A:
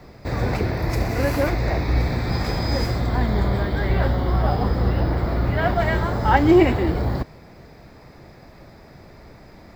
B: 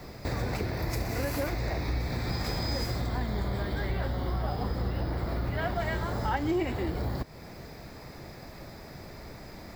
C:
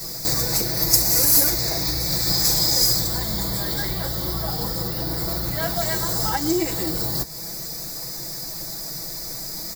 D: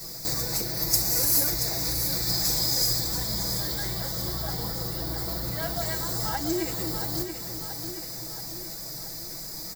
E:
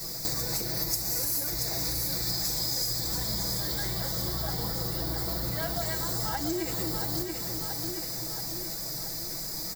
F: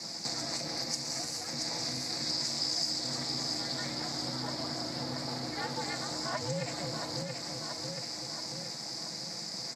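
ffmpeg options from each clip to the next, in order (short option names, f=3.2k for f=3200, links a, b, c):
-af "acompressor=threshold=-31dB:ratio=3,highshelf=f=4.8k:g=9.5"
-af "aecho=1:1:6.1:0.95,flanger=delay=4.9:depth=3.8:regen=-76:speed=0.92:shape=triangular,aexciter=amount=14:drive=3.3:freq=4.3k,volume=5.5dB"
-af "aecho=1:1:679|1358|2037|2716|3395|4074|4753:0.398|0.219|0.12|0.0662|0.0364|0.02|0.011,volume=-6.5dB"
-af "acompressor=threshold=-29dB:ratio=5,volume=2dB"
-af "aeval=exprs='val(0)*sin(2*PI*190*n/s)':c=same,acrusher=bits=4:mode=log:mix=0:aa=0.000001,highpass=f=120:w=0.5412,highpass=f=120:w=1.3066,equalizer=f=390:t=q:w=4:g=-8,equalizer=f=710:t=q:w=4:g=4,equalizer=f=2.1k:t=q:w=4:g=4,equalizer=f=3.3k:t=q:w=4:g=-4,equalizer=f=4.7k:t=q:w=4:g=5,lowpass=f=7.5k:w=0.5412,lowpass=f=7.5k:w=1.3066"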